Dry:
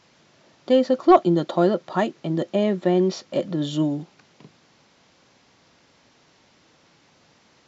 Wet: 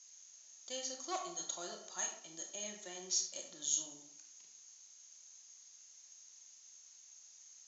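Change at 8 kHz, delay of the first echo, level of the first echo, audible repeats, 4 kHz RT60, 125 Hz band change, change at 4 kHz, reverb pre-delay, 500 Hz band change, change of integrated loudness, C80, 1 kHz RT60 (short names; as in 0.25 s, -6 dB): n/a, none, none, none, 0.40 s, under -35 dB, -8.0 dB, 26 ms, -29.5 dB, -18.0 dB, 9.5 dB, 0.65 s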